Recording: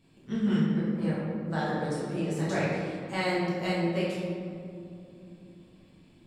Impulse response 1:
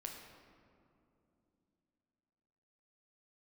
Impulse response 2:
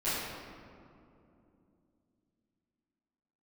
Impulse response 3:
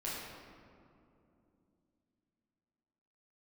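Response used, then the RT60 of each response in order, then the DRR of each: 3; 2.8, 2.7, 2.8 s; 1.0, -15.5, -8.0 dB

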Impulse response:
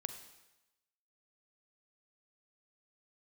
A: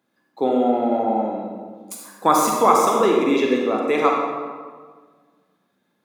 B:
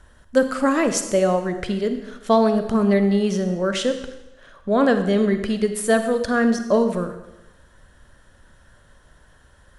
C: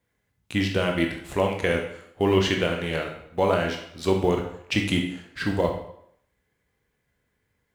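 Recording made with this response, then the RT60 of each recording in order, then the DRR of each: B; 1.6, 1.0, 0.70 s; -0.5, 8.0, 2.0 dB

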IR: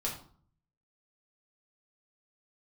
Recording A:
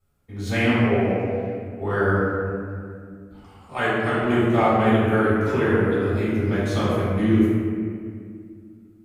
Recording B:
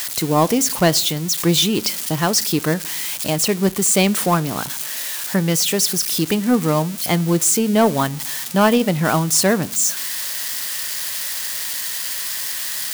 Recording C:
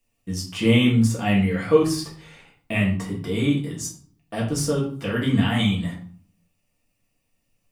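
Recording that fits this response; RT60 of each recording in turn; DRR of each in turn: C; 2.1 s, not exponential, 0.50 s; -11.5, 16.5, -4.0 dB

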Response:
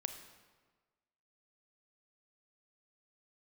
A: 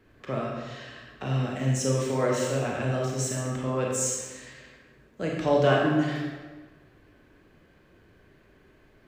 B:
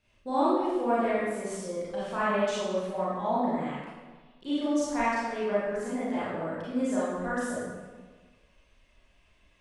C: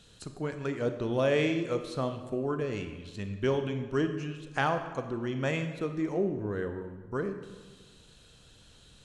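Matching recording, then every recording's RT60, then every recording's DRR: C; 1.4, 1.4, 1.4 s; -2.5, -10.0, 7.0 dB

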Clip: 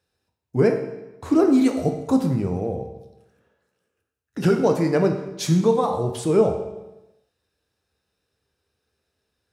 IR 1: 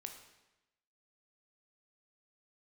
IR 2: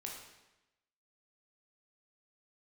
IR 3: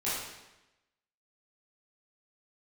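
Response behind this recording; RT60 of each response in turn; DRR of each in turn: 1; 1.0, 1.0, 1.0 s; 4.0, -1.5, -11.5 dB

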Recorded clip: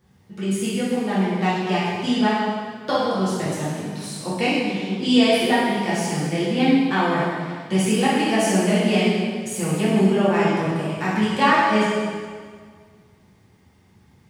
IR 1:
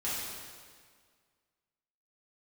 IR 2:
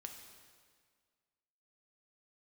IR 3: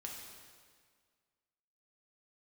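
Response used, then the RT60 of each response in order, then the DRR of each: 1; 1.8, 1.8, 1.8 s; -10.0, 3.5, -1.5 dB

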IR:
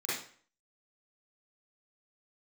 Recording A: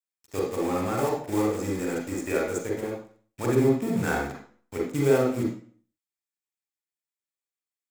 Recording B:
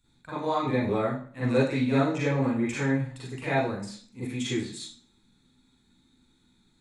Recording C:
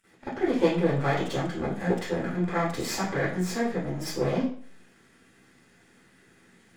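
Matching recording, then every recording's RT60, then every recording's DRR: B; 0.50, 0.50, 0.50 s; -1.5, -10.5, -16.5 dB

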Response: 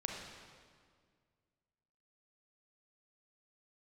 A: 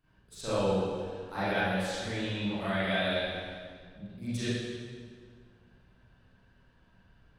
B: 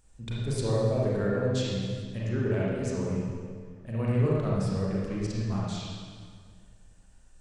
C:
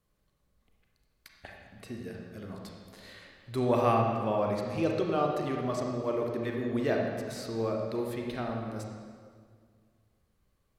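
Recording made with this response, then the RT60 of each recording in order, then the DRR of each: C; 1.9, 1.9, 1.9 s; -15.0, -6.5, 0.0 dB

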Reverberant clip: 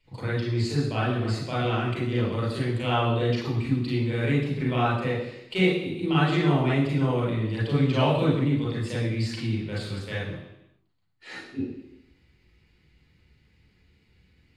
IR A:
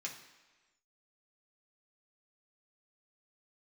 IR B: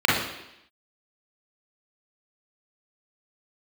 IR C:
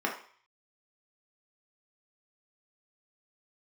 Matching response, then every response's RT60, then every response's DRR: B; 1.3, 0.85, 0.50 s; -2.5, -6.5, -1.5 dB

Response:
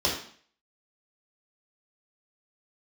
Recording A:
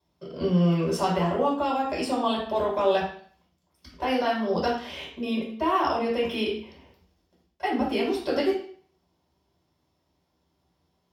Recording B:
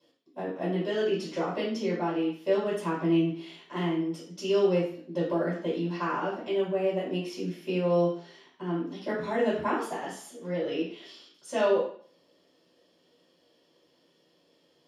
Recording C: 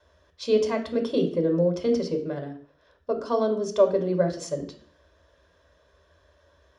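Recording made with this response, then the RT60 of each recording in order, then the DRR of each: A; 0.50, 0.50, 0.50 s; -5.0, -10.0, 5.0 dB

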